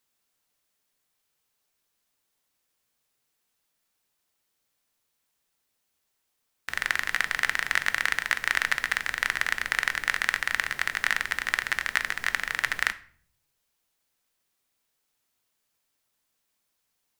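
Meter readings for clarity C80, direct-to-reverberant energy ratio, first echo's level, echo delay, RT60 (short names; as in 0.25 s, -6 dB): 21.0 dB, 11.0 dB, none, none, 0.50 s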